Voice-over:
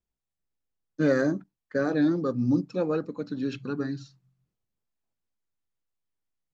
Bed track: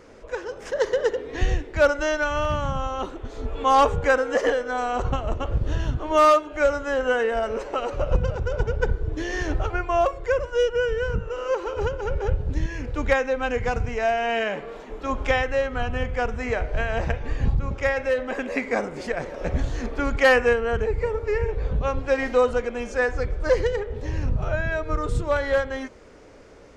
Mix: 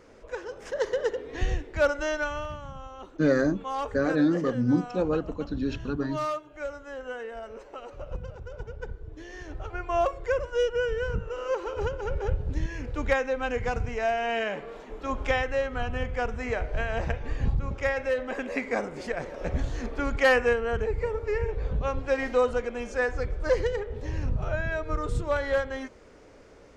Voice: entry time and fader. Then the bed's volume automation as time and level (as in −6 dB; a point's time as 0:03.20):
2.20 s, +0.5 dB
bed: 0:02.24 −5 dB
0:02.59 −14.5 dB
0:09.50 −14.5 dB
0:09.97 −4 dB